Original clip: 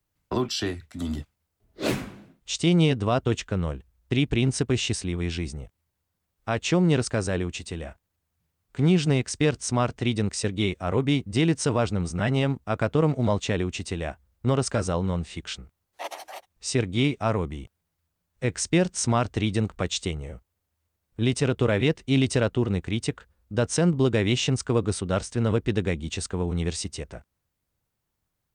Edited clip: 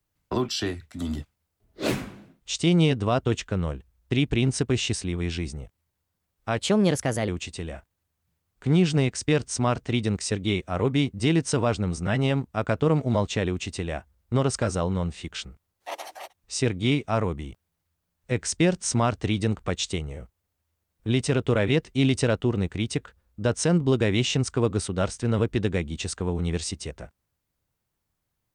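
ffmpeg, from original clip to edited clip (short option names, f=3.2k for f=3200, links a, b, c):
-filter_complex "[0:a]asplit=3[a][b][c];[a]atrim=end=6.584[d];[b]atrim=start=6.58:end=7.41,asetpts=PTS-STARTPTS,asetrate=52038,aresample=44100,atrim=end_sample=31019,asetpts=PTS-STARTPTS[e];[c]atrim=start=7.406[f];[d][e]acrossfade=d=0.004:c1=hsin:c2=hsin[g];[g][f]acrossfade=d=0.004:c1=hsin:c2=hsin"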